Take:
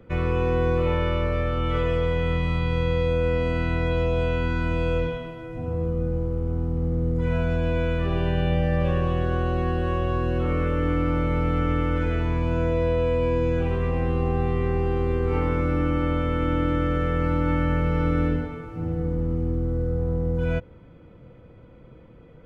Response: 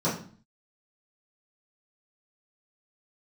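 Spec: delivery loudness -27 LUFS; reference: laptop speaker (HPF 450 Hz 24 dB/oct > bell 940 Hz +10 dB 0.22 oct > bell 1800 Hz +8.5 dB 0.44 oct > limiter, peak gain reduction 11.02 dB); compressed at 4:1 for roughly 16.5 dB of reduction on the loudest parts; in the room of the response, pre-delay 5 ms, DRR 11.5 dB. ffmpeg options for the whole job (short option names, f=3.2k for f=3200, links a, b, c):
-filter_complex "[0:a]acompressor=threshold=-40dB:ratio=4,asplit=2[a][b];[1:a]atrim=start_sample=2205,adelay=5[c];[b][c]afir=irnorm=-1:irlink=0,volume=-23.5dB[d];[a][d]amix=inputs=2:normalize=0,highpass=f=450:w=0.5412,highpass=f=450:w=1.3066,equalizer=f=940:t=o:w=0.22:g=10,equalizer=f=1.8k:t=o:w=0.44:g=8.5,volume=22.5dB,alimiter=limit=-19dB:level=0:latency=1"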